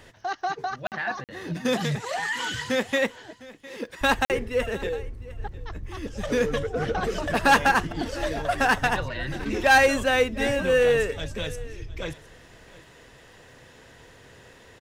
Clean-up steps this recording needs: de-click; interpolate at 0.87/1.24/4.25 s, 48 ms; inverse comb 707 ms -20 dB

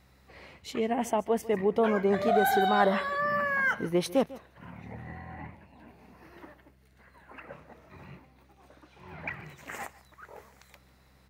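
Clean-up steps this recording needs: de-hum 65 Hz, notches 3; inverse comb 147 ms -19 dB

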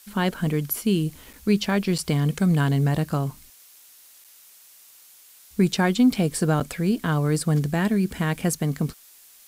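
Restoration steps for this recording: de-click; interpolate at 1.33/1.98/4.24/6.60 s, 6.2 ms; noise print and reduce 18 dB

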